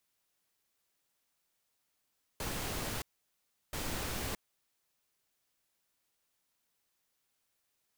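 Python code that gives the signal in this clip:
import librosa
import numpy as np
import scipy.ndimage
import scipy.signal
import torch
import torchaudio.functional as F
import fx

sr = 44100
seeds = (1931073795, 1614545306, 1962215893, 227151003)

y = fx.noise_burst(sr, seeds[0], colour='pink', on_s=0.62, off_s=0.71, bursts=2, level_db=-37.5)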